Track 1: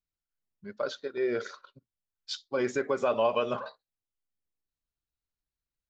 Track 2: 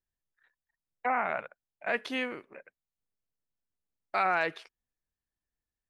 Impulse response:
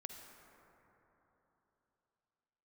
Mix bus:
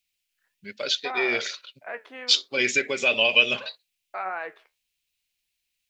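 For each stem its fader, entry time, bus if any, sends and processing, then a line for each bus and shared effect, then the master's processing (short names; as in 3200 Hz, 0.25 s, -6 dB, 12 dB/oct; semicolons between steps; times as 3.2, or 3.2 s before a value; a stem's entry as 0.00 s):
+1.0 dB, 0.00 s, no send, resonant high shelf 1700 Hz +13.5 dB, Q 3
+1.0 dB, 0.00 s, no send, flange 1.6 Hz, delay 9.3 ms, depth 4.1 ms, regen +68%; three-band isolator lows -14 dB, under 340 Hz, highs -15 dB, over 2300 Hz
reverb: off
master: low shelf 100 Hz -5.5 dB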